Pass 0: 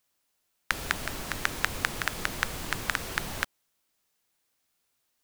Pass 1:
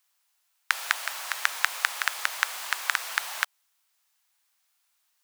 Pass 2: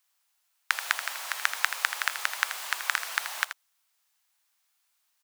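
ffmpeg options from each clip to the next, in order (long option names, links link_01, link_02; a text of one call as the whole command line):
ffmpeg -i in.wav -af "highpass=frequency=780:width=0.5412,highpass=frequency=780:width=1.3066,volume=3.5dB" out.wav
ffmpeg -i in.wav -af "aecho=1:1:81:0.299,volume=-1.5dB" out.wav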